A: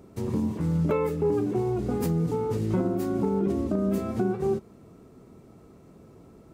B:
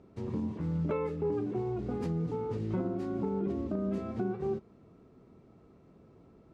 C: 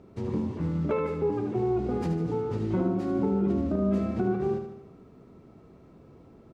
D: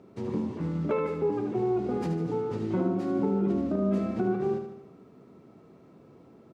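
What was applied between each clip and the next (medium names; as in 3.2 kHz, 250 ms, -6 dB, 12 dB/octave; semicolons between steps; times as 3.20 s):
low-pass 4.2 kHz 12 dB/octave; trim -7 dB
feedback delay 76 ms, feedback 52%, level -7.5 dB; trim +5 dB
high-pass 140 Hz 12 dB/octave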